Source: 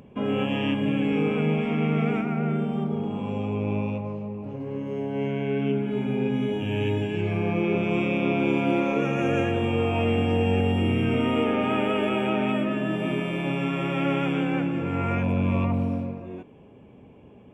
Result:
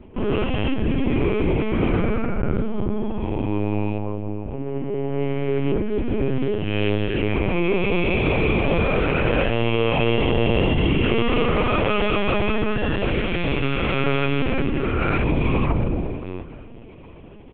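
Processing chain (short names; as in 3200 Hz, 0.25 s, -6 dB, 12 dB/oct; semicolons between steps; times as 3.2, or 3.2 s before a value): high shelf 2900 Hz -3.5 dB, from 6.69 s +8 dB; soft clip -17.5 dBFS, distortion -18 dB; feedback echo 0.733 s, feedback 33%, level -19 dB; LPC vocoder at 8 kHz pitch kept; gain +5.5 dB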